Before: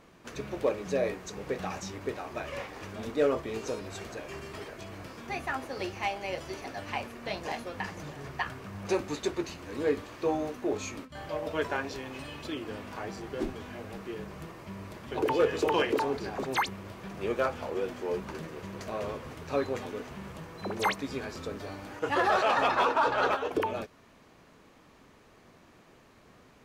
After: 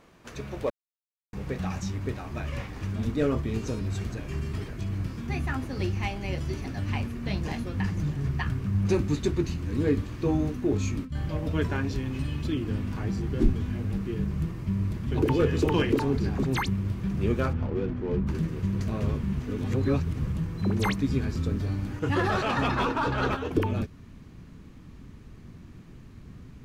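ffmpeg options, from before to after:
ffmpeg -i in.wav -filter_complex "[0:a]asplit=3[link_01][link_02][link_03];[link_01]afade=type=out:start_time=17.52:duration=0.02[link_04];[link_02]adynamicsmooth=sensitivity=5.5:basefreq=1600,afade=type=in:start_time=17.52:duration=0.02,afade=type=out:start_time=18.26:duration=0.02[link_05];[link_03]afade=type=in:start_time=18.26:duration=0.02[link_06];[link_04][link_05][link_06]amix=inputs=3:normalize=0,asplit=5[link_07][link_08][link_09][link_10][link_11];[link_07]atrim=end=0.7,asetpts=PTS-STARTPTS,afade=type=out:start_time=0.696:duration=0.004:curve=hsin[link_12];[link_08]atrim=start=0.7:end=1.33,asetpts=PTS-STARTPTS,volume=0[link_13];[link_09]atrim=start=1.33:end=19.232,asetpts=PTS-STARTPTS,afade=type=in:duration=0.004:curve=hsin[link_14];[link_10]atrim=start=19.228:end=20.272,asetpts=PTS-STARTPTS,areverse[link_15];[link_11]atrim=start=20.268[link_16];[link_12][link_13][link_14]concat=n=3:v=0:a=1[link_17];[link_17][link_15]acrossfade=duration=0.004:curve1=hsin:curve2=hsin[link_18];[link_18][link_16]acrossfade=duration=0.004:curve1=hsin:curve2=hsin,asubboost=boost=11.5:cutoff=180" out.wav

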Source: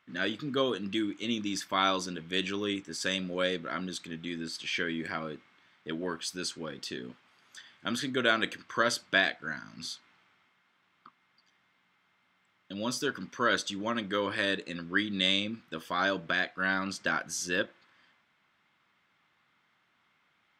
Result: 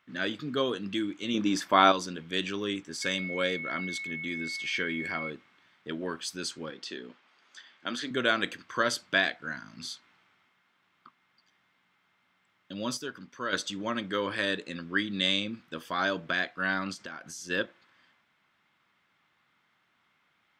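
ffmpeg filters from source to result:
ffmpeg -i in.wav -filter_complex "[0:a]asettb=1/sr,asplit=3[link_01][link_02][link_03];[link_01]atrim=end=1.344[link_04];[link_02]atrim=start=1.34:end=1.92,asetpts=PTS-STARTPTS,afade=type=in:duration=0.004:curve=qsin,afade=type=out:start_time=0.576:duration=0.004:curve=qsin,equalizer=frequency=570:width=0.33:gain=9.5[link_05];[link_03]atrim=start=1.916[link_06];[link_04][link_05]acrossfade=duration=0.004:curve1=hsin:curve2=qsin[link_07];[link_07][link_06]acrossfade=duration=0.004:curve1=qsin:curve2=hsin,asettb=1/sr,asplit=3[link_08][link_09][link_10];[link_08]atrim=end=3.024[link_11];[link_09]atrim=start=3.02:end=5.3,asetpts=PTS-STARTPTS,afade=type=in:duration=0.004:curve=qsin,afade=type=out:start_time=2.276:duration=0.004:curve=qsin,aeval=exprs='val(0)+0.0178*sin(2*PI*2200*n/s)':channel_layout=same[link_12];[link_10]atrim=start=5.296[link_13];[link_11][link_12]acrossfade=duration=0.004:curve1=hsin:curve2=qsin[link_14];[link_14][link_13]acrossfade=duration=0.004:curve1=qsin:curve2=hsin,asettb=1/sr,asplit=3[link_15][link_16][link_17];[link_15]atrim=end=6.704[link_18];[link_16]atrim=start=6.7:end=8.11,asetpts=PTS-STARTPTS,afade=type=in:duration=0.004:curve=qsin,afade=type=out:start_time=1.406:duration=0.004:curve=qsin,highpass=260,lowpass=6500[link_19];[link_17]atrim=start=8.106[link_20];[link_18][link_19]acrossfade=duration=0.004:curve1=hsin:curve2=qsin[link_21];[link_21][link_20]acrossfade=duration=0.004:curve1=qsin:curve2=hsin,asplit=3[link_22][link_23][link_24];[link_22]afade=type=out:start_time=16.93:duration=0.02[link_25];[link_23]acompressor=threshold=-41dB:ratio=3:attack=3.2:release=140:knee=1:detection=peak,afade=type=in:start_time=16.93:duration=0.02,afade=type=out:start_time=17.49:duration=0.02[link_26];[link_24]afade=type=in:start_time=17.49:duration=0.02[link_27];[link_25][link_26][link_27]amix=inputs=3:normalize=0,asplit=3[link_28][link_29][link_30];[link_28]atrim=end=12.972[link_31];[link_29]atrim=start=12.968:end=13.532,asetpts=PTS-STARTPTS,volume=-6.5dB[link_32];[link_30]atrim=start=13.528[link_33];[link_31][link_32]acrossfade=duration=0.004:curve1=hsin:curve2=hsin[link_34];[link_34][link_33]acrossfade=duration=0.004:curve1=hsin:curve2=hsin" out.wav

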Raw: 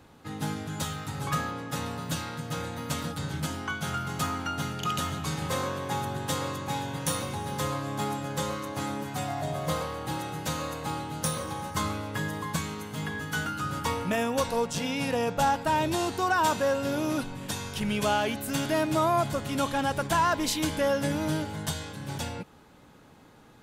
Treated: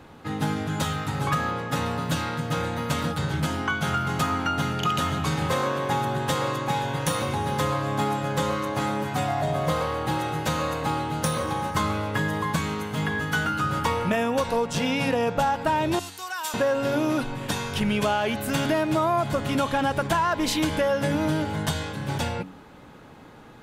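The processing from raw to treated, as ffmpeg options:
ffmpeg -i in.wav -filter_complex "[0:a]asettb=1/sr,asplit=3[link_01][link_02][link_03];[link_01]atrim=end=15.994[link_04];[link_02]atrim=start=15.99:end=16.54,asetpts=PTS-STARTPTS,afade=type=in:duration=0.004:curve=qsin,afade=type=out:start_time=0.546:duration=0.004:curve=qsin,aderivative[link_05];[link_03]atrim=start=16.536[link_06];[link_04][link_05]acrossfade=duration=0.004:curve1=hsin:curve2=qsin[link_07];[link_07][link_06]acrossfade=duration=0.004:curve1=qsin:curve2=hsin,bass=frequency=250:gain=-1,treble=frequency=4000:gain=-7,bandreject=frequency=93.14:width_type=h:width=4,bandreject=frequency=186.28:width_type=h:width=4,bandreject=frequency=279.42:width_type=h:width=4,acompressor=threshold=-28dB:ratio=6,volume=8dB" out.wav

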